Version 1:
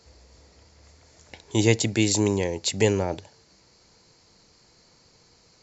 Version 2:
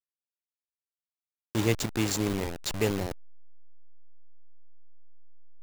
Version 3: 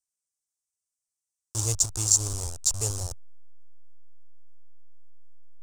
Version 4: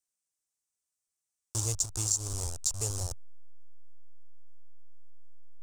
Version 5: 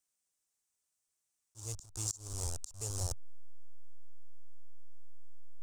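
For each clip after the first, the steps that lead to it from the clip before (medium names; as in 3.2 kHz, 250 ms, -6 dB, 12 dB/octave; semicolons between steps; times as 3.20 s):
send-on-delta sampling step -21 dBFS; trim -6 dB
FFT filter 100 Hz 0 dB, 210 Hz -22 dB, 670 Hz -10 dB, 1.2 kHz -9 dB, 2 kHz -23 dB, 3.9 kHz -8 dB, 5.8 kHz +9 dB, 8.5 kHz +13 dB, 15 kHz -9 dB; trim +3.5 dB
compression 2.5:1, threshold -29 dBFS, peak gain reduction 10 dB
slow attack 604 ms; trim +2.5 dB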